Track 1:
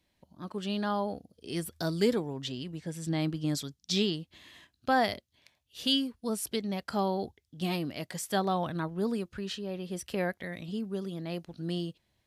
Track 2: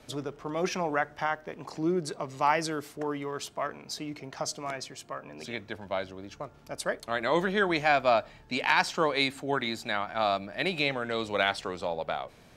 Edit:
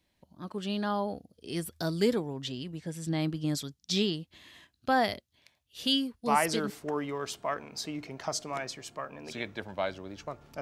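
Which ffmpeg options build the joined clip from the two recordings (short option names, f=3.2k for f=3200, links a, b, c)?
-filter_complex "[0:a]apad=whole_dur=10.61,atrim=end=10.61,atrim=end=6.7,asetpts=PTS-STARTPTS[a];[1:a]atrim=start=2.39:end=6.74,asetpts=PTS-STARTPTS[b];[a][b]acrossfade=d=0.44:c1=log:c2=log"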